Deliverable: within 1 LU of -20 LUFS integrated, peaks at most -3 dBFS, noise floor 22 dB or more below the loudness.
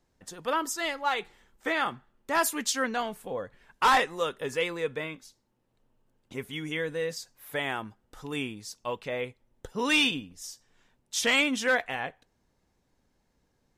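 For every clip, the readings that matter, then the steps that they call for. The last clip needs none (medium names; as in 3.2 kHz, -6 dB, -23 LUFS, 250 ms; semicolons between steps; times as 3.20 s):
loudness -29.0 LUFS; peak level -15.0 dBFS; loudness target -20.0 LUFS
-> trim +9 dB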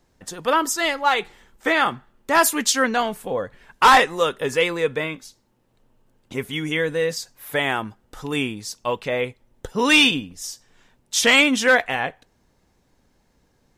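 loudness -20.0 LUFS; peak level -6.0 dBFS; noise floor -64 dBFS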